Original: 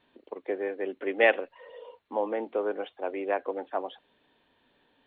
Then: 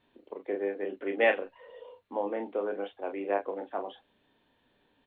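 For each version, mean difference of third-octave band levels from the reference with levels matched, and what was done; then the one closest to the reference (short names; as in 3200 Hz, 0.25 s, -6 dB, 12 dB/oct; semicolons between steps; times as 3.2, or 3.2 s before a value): 1.5 dB: low shelf 240 Hz +6.5 dB; on a send: early reflections 30 ms -7.5 dB, 40 ms -10 dB; on the sum: gain -4.5 dB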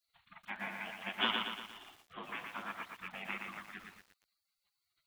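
16.5 dB: spectral gate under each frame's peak -25 dB weak; lo-fi delay 0.117 s, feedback 55%, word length 11-bit, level -4 dB; gain +7.5 dB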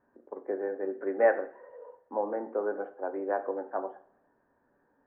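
3.5 dB: elliptic low-pass 1600 Hz, stop band 70 dB; two-slope reverb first 0.49 s, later 1.6 s, from -24 dB, DRR 7 dB; gain -2 dB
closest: first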